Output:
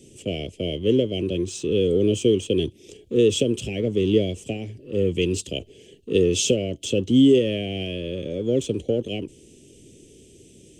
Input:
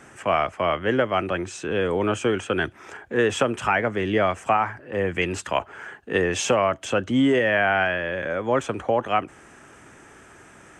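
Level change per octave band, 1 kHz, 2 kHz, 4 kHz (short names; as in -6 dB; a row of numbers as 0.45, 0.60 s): under -20 dB, -13.5 dB, +3.5 dB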